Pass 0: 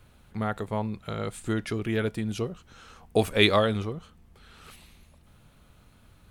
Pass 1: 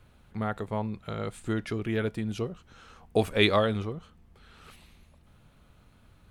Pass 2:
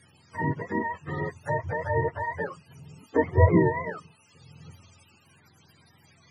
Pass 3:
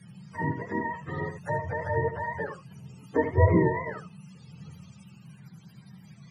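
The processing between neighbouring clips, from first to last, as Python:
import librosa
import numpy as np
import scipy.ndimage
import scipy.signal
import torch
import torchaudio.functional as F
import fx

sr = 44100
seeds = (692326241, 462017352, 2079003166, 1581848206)

y1 = fx.high_shelf(x, sr, hz=5100.0, db=-6.0)
y1 = y1 * 10.0 ** (-1.5 / 20.0)
y2 = fx.octave_mirror(y1, sr, pivot_hz=450.0)
y2 = fx.env_lowpass_down(y2, sr, base_hz=2100.0, full_db=-26.5)
y2 = y2 * 10.0 ** (4.0 / 20.0)
y3 = fx.dmg_noise_band(y2, sr, seeds[0], low_hz=120.0, high_hz=200.0, level_db=-47.0)
y3 = y3 + 10.0 ** (-9.5 / 20.0) * np.pad(y3, (int(77 * sr / 1000.0), 0))[:len(y3)]
y3 = y3 * 10.0 ** (-2.0 / 20.0)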